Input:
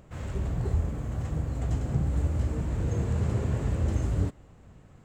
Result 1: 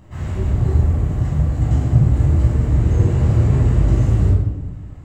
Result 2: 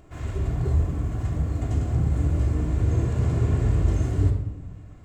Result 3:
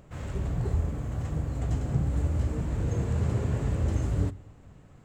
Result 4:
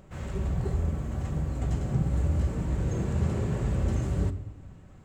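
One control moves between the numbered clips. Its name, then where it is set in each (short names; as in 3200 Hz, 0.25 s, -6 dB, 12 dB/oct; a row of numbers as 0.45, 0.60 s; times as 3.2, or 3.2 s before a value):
shoebox room, microphone at: 10, 3.2, 0.31, 1.1 m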